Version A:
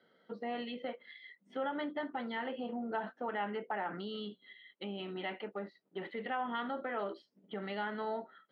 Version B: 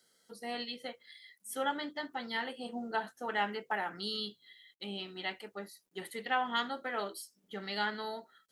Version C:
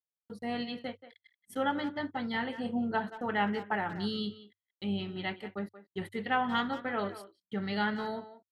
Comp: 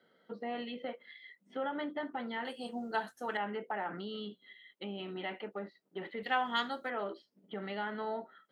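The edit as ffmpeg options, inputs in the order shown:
ffmpeg -i take0.wav -i take1.wav -filter_complex "[1:a]asplit=2[link_01][link_02];[0:a]asplit=3[link_03][link_04][link_05];[link_03]atrim=end=2.452[link_06];[link_01]atrim=start=2.448:end=3.372[link_07];[link_04]atrim=start=3.368:end=6.232[link_08];[link_02]atrim=start=6.228:end=6.902[link_09];[link_05]atrim=start=6.898[link_10];[link_06][link_07]acrossfade=duration=0.004:curve1=hsin:curve2=hsin[link_11];[link_11][link_08]acrossfade=duration=0.004:curve1=hsin:curve2=hsin[link_12];[link_12][link_09]acrossfade=duration=0.004:curve1=hsin:curve2=hsin[link_13];[link_13][link_10]acrossfade=duration=0.004:curve1=hsin:curve2=hsin" out.wav

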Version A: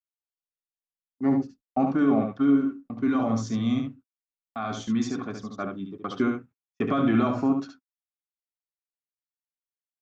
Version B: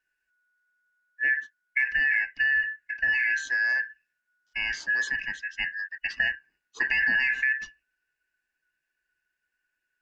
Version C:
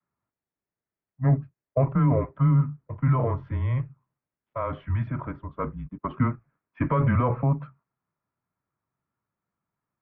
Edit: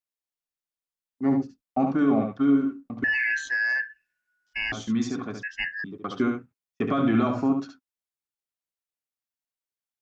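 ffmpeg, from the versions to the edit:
ffmpeg -i take0.wav -i take1.wav -filter_complex "[1:a]asplit=2[link_01][link_02];[0:a]asplit=3[link_03][link_04][link_05];[link_03]atrim=end=3.042[link_06];[link_01]atrim=start=3.038:end=4.722[link_07];[link_04]atrim=start=4.718:end=5.432[link_08];[link_02]atrim=start=5.428:end=5.842[link_09];[link_05]atrim=start=5.838[link_10];[link_06][link_07]acrossfade=duration=0.004:curve1=hsin:curve2=hsin[link_11];[link_11][link_08]acrossfade=duration=0.004:curve1=hsin:curve2=hsin[link_12];[link_12][link_09]acrossfade=duration=0.004:curve1=hsin:curve2=hsin[link_13];[link_13][link_10]acrossfade=duration=0.004:curve1=hsin:curve2=hsin" out.wav

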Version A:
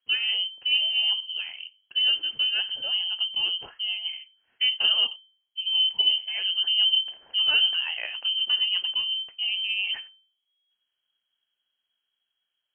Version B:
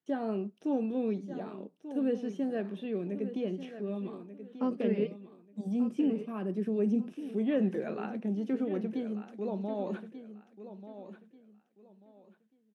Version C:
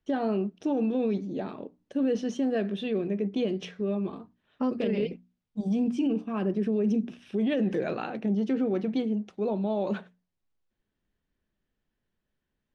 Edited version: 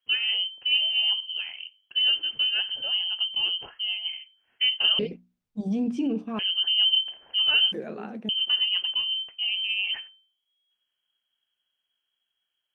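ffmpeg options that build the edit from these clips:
ffmpeg -i take0.wav -i take1.wav -i take2.wav -filter_complex "[0:a]asplit=3[link_01][link_02][link_03];[link_01]atrim=end=4.992[link_04];[2:a]atrim=start=4.988:end=6.392[link_05];[link_02]atrim=start=6.388:end=7.722[link_06];[1:a]atrim=start=7.718:end=8.292[link_07];[link_03]atrim=start=8.288[link_08];[link_04][link_05]acrossfade=duration=0.004:curve1=hsin:curve2=hsin[link_09];[link_09][link_06]acrossfade=duration=0.004:curve1=hsin:curve2=hsin[link_10];[link_10][link_07]acrossfade=duration=0.004:curve1=hsin:curve2=hsin[link_11];[link_11][link_08]acrossfade=duration=0.004:curve1=hsin:curve2=hsin" out.wav

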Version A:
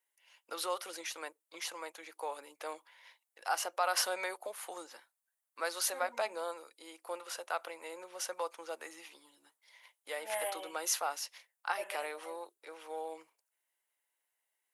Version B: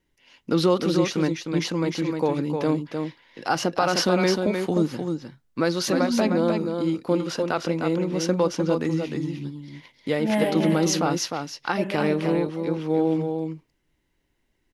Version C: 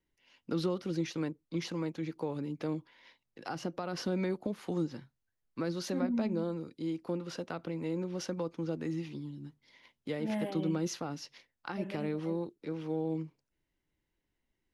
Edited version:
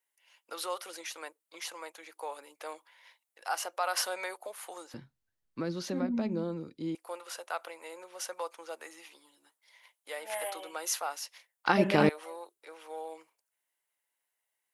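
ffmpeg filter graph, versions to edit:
ffmpeg -i take0.wav -i take1.wav -i take2.wav -filter_complex "[0:a]asplit=3[link_01][link_02][link_03];[link_01]atrim=end=4.942[link_04];[2:a]atrim=start=4.938:end=6.952[link_05];[link_02]atrim=start=6.948:end=11.662[link_06];[1:a]atrim=start=11.658:end=12.092[link_07];[link_03]atrim=start=12.088[link_08];[link_04][link_05]acrossfade=duration=0.004:curve1=hsin:curve2=hsin[link_09];[link_09][link_06]acrossfade=duration=0.004:curve1=hsin:curve2=hsin[link_10];[link_10][link_07]acrossfade=duration=0.004:curve1=hsin:curve2=hsin[link_11];[link_11][link_08]acrossfade=duration=0.004:curve1=hsin:curve2=hsin" out.wav

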